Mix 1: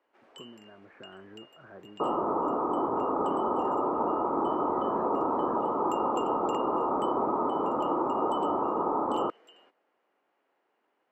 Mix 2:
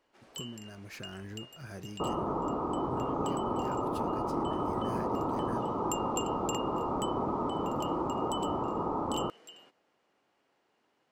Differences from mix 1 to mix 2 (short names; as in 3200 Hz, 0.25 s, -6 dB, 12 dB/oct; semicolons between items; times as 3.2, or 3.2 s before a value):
speech: remove LPF 1600 Hz 24 dB/oct; second sound -5.5 dB; master: remove three-band isolator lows -18 dB, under 250 Hz, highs -15 dB, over 2700 Hz